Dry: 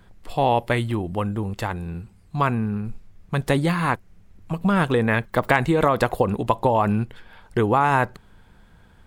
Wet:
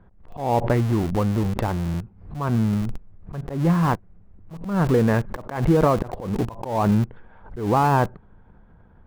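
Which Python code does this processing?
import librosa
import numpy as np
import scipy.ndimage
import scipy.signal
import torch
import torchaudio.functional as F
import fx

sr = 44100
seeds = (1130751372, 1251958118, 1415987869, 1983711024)

p1 = scipy.signal.sosfilt(scipy.signal.butter(2, 1100.0, 'lowpass', fs=sr, output='sos'), x)
p2 = fx.schmitt(p1, sr, flips_db=-29.0)
p3 = p1 + (p2 * librosa.db_to_amplitude(-7.5))
p4 = fx.auto_swell(p3, sr, attack_ms=211.0)
p5 = fx.dynamic_eq(p4, sr, hz=160.0, q=1.8, threshold_db=-35.0, ratio=4.0, max_db=3)
y = fx.pre_swell(p5, sr, db_per_s=94.0)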